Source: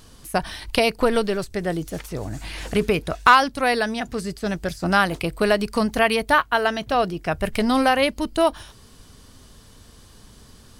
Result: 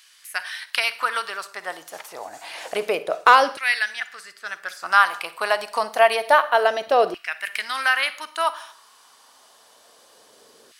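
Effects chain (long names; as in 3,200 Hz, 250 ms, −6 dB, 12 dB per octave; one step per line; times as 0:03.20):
four-comb reverb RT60 0.54 s, DRR 13.5 dB
auto-filter high-pass saw down 0.28 Hz 440–2,100 Hz
0:02.95–0:04.73: one half of a high-frequency compander decoder only
level −1.5 dB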